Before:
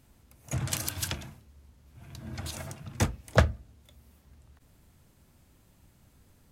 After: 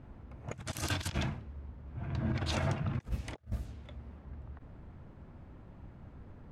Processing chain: low-pass opened by the level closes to 1300 Hz, open at -25.5 dBFS; negative-ratio compressor -40 dBFS, ratio -0.5; gain +3.5 dB

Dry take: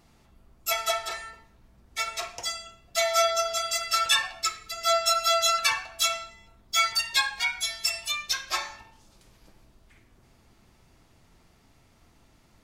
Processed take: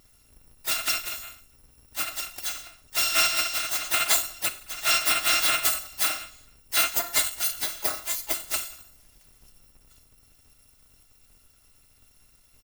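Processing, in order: FFT order left unsorted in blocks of 256 samples; harmoniser -12 st -11 dB, +5 st -10 dB

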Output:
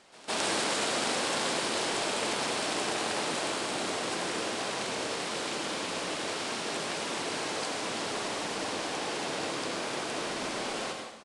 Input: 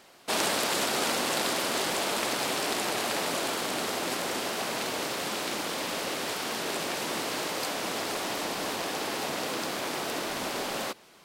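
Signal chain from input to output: pre-echo 0.16 s -22 dB; on a send at -2.5 dB: reverb RT60 0.95 s, pre-delay 78 ms; on the sum: downsampling 22050 Hz; gain -3.5 dB

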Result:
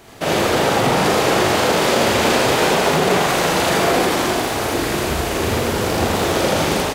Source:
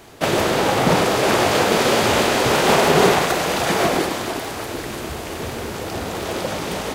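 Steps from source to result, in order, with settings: AGC gain up to 5.5 dB; limiter -10 dBFS, peak gain reduction 8.5 dB; loudspeakers at several distances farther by 15 m -3 dB, 28 m 0 dB; gain -1 dB

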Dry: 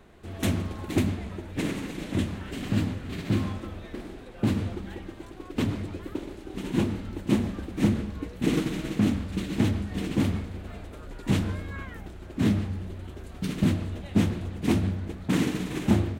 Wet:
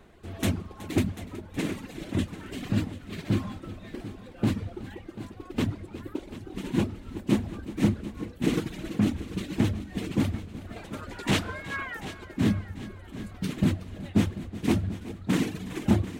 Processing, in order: reverb removal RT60 1.5 s; 10.76–12.25 overdrive pedal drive 16 dB, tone 7100 Hz, clips at -13 dBFS; multi-head echo 0.37 s, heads first and second, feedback 48%, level -16.5 dB

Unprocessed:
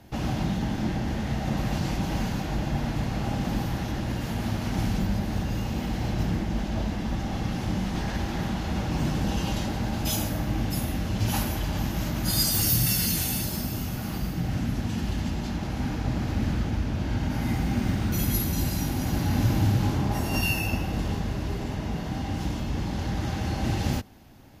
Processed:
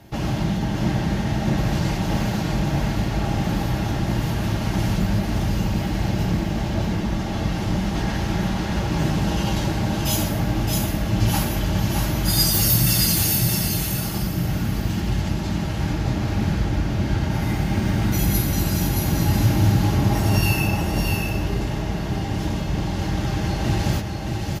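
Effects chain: bell 71 Hz -5.5 dB 0.35 oct; notch comb 250 Hz; echo 0.622 s -4 dB; gain +5.5 dB

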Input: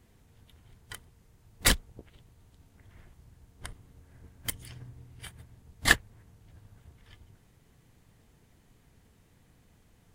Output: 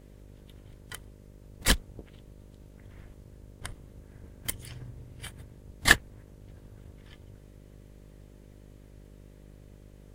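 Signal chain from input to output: buzz 50 Hz, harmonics 12, -54 dBFS -5 dB/oct; attack slew limiter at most 430 dB/s; gain +2.5 dB

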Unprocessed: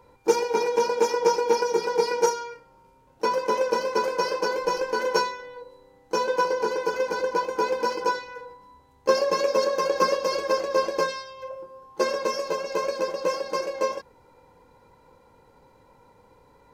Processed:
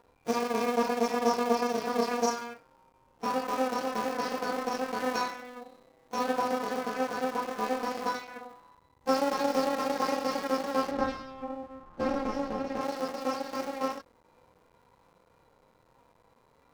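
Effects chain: cycle switcher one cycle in 2, muted; 10.91–12.81 RIAA curve playback; harmonic-percussive split percussive -17 dB

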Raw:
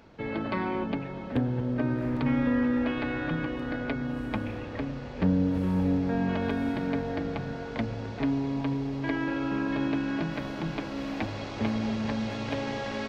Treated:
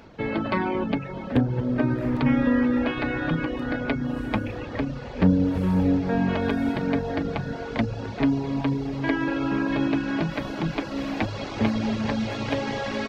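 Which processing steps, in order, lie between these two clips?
reverb removal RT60 0.67 s; gain +6.5 dB

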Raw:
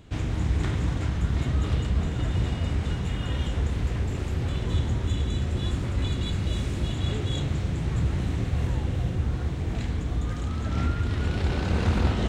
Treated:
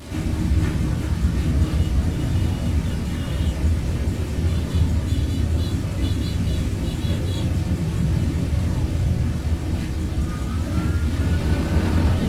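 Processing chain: delta modulation 64 kbps, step -34 dBFS; HPF 110 Hz 6 dB/oct; reverb removal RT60 0.59 s; low shelf 220 Hz +6.5 dB; harmoniser +3 st -7 dB; shoebox room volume 330 m³, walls furnished, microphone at 2.5 m; gain -2 dB

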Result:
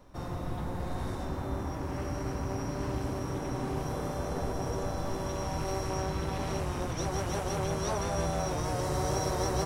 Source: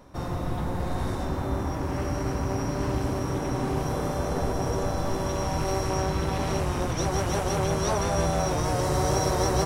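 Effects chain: added noise brown -52 dBFS; gain -6 dB

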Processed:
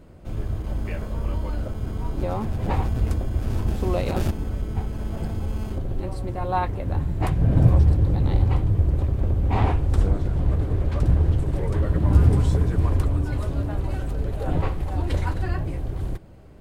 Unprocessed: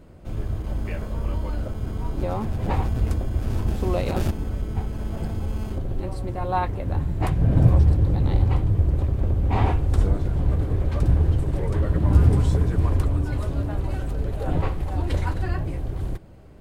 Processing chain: 9.61–11.46 Doppler distortion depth 0.37 ms

